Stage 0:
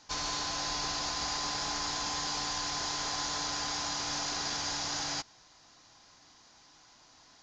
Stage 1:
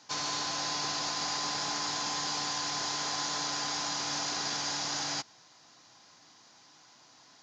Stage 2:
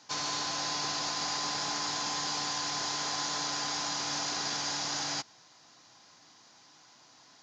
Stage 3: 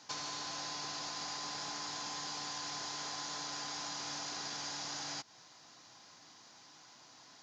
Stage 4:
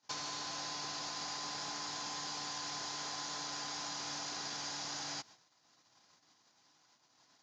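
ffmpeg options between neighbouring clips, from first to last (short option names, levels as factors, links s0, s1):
-af "highpass=f=110:w=0.5412,highpass=f=110:w=1.3066,volume=1.12"
-af anull
-af "acompressor=threshold=0.0112:ratio=6"
-af "agate=range=0.0794:threshold=0.00158:ratio=16:detection=peak"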